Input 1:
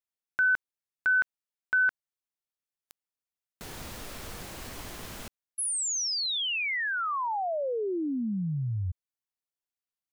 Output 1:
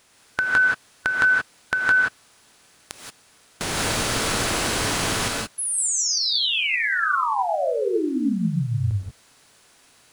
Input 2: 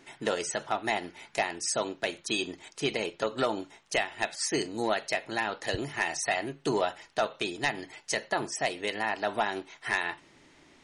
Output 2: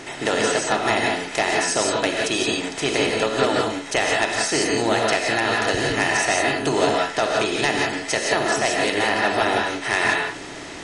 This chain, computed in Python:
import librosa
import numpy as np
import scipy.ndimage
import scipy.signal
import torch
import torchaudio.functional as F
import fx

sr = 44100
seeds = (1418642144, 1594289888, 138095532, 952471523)

y = fx.bin_compress(x, sr, power=0.6)
y = fx.rev_gated(y, sr, seeds[0], gate_ms=200, shape='rising', drr_db=-1.0)
y = y * librosa.db_to_amplitude(3.0)